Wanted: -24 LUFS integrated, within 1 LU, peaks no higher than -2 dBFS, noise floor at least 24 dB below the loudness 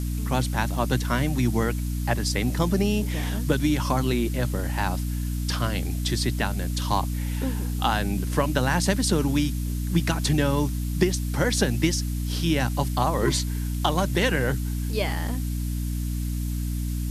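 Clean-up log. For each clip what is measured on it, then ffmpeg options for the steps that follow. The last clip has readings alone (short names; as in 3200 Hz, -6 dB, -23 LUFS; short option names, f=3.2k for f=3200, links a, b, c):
hum 60 Hz; harmonics up to 300 Hz; hum level -25 dBFS; noise floor -28 dBFS; noise floor target -50 dBFS; loudness -25.5 LUFS; peak -7.0 dBFS; loudness target -24.0 LUFS
-> -af "bandreject=f=60:t=h:w=4,bandreject=f=120:t=h:w=4,bandreject=f=180:t=h:w=4,bandreject=f=240:t=h:w=4,bandreject=f=300:t=h:w=4"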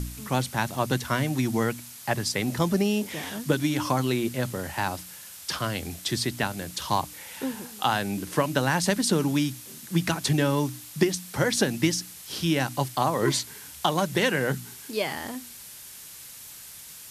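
hum none; noise floor -44 dBFS; noise floor target -51 dBFS
-> -af "afftdn=nr=7:nf=-44"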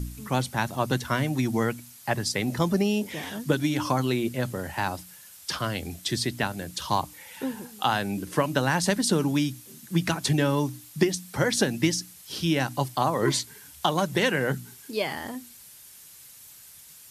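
noise floor -49 dBFS; noise floor target -51 dBFS
-> -af "afftdn=nr=6:nf=-49"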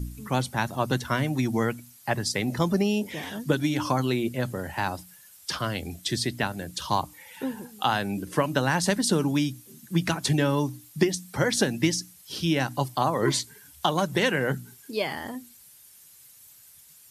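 noise floor -53 dBFS; loudness -27.0 LUFS; peak -7.5 dBFS; loudness target -24.0 LUFS
-> -af "volume=3dB"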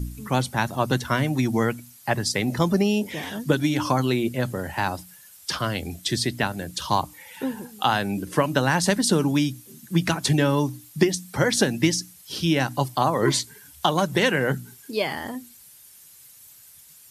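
loudness -24.0 LUFS; peak -4.5 dBFS; noise floor -50 dBFS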